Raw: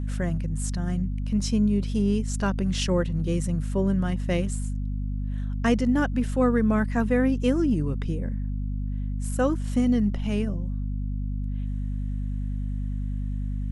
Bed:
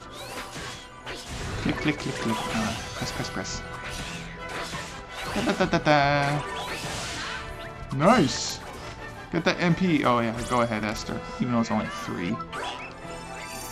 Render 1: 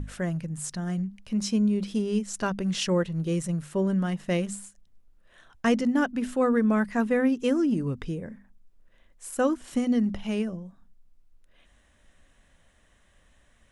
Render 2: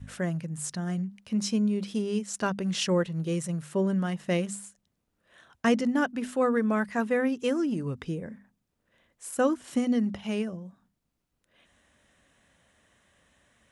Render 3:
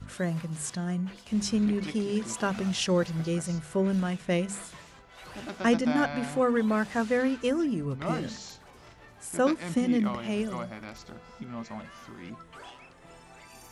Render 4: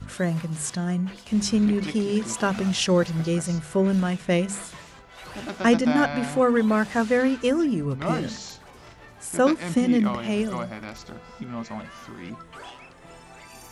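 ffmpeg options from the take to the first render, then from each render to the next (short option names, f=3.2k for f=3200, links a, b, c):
-af "bandreject=f=50:t=h:w=6,bandreject=f=100:t=h:w=6,bandreject=f=150:t=h:w=6,bandreject=f=200:t=h:w=6,bandreject=f=250:t=h:w=6"
-af "highpass=96,adynamicequalizer=threshold=0.0178:dfrequency=240:dqfactor=1.1:tfrequency=240:tqfactor=1.1:attack=5:release=100:ratio=0.375:range=2.5:mode=cutabove:tftype=bell"
-filter_complex "[1:a]volume=-14dB[a];[0:a][a]amix=inputs=2:normalize=0"
-af "volume=5dB"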